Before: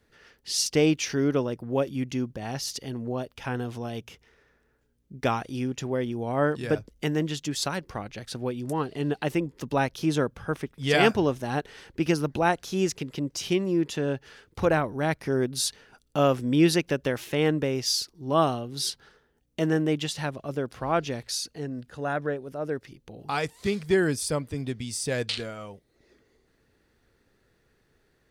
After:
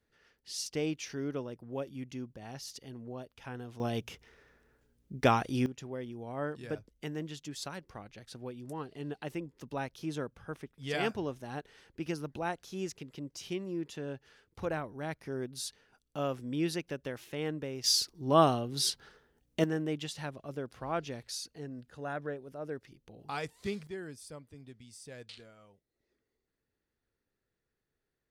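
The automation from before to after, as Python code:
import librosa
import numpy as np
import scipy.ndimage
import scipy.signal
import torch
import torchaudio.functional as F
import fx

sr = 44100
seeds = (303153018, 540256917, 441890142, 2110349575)

y = fx.gain(x, sr, db=fx.steps((0.0, -12.0), (3.8, 0.5), (5.66, -12.0), (17.84, -1.0), (19.64, -9.0), (23.87, -19.5)))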